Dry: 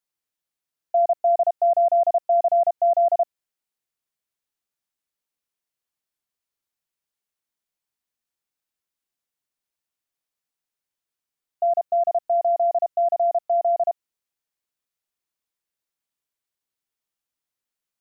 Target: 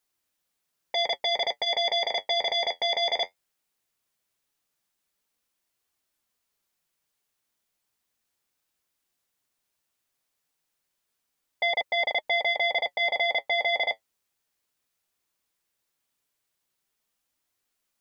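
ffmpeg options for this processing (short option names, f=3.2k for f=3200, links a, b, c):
-af "aeval=exprs='0.211*sin(PI/2*3.98*val(0)/0.211)':c=same,flanger=delay=2.5:depth=9.8:regen=-53:speed=0.17:shape=triangular,volume=-4.5dB"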